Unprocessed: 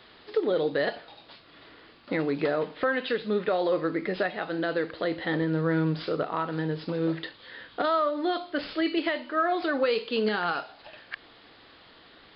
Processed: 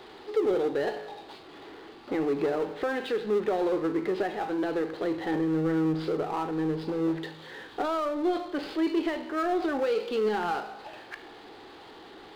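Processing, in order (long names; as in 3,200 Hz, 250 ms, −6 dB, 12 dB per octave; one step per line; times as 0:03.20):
tuned comb filter 53 Hz, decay 1 s, harmonics all, mix 50%
hollow resonant body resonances 380/800 Hz, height 13 dB, ringing for 20 ms
power curve on the samples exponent 0.7
level −6.5 dB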